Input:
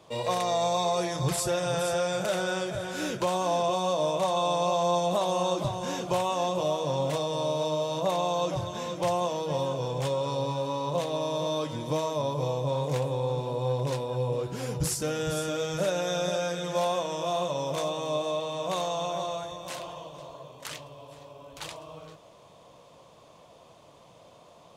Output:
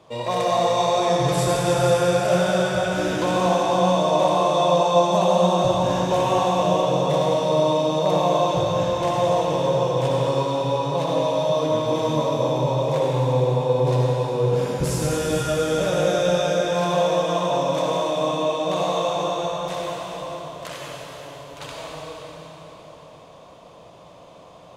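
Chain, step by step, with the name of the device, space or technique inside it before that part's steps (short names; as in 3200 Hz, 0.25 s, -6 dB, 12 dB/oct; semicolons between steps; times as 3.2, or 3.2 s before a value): swimming-pool hall (reverb RT60 3.9 s, pre-delay 54 ms, DRR -4 dB; high shelf 4200 Hz -7 dB); gain +3 dB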